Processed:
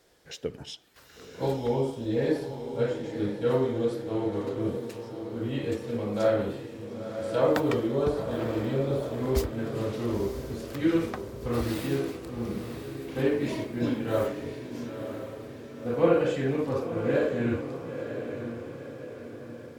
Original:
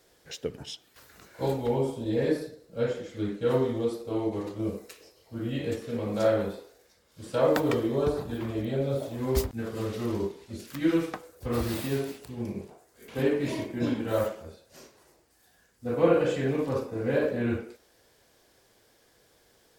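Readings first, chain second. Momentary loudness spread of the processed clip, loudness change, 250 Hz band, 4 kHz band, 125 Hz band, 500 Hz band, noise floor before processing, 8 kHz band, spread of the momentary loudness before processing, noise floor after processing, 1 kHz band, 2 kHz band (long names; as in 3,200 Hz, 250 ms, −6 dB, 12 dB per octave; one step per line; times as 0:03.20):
13 LU, 0.0 dB, +1.0 dB, 0.0 dB, +1.0 dB, +0.5 dB, −64 dBFS, −2.0 dB, 14 LU, −47 dBFS, +0.5 dB, +0.5 dB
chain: high-shelf EQ 7,100 Hz −5 dB
feedback delay with all-pass diffusion 975 ms, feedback 51%, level −8.5 dB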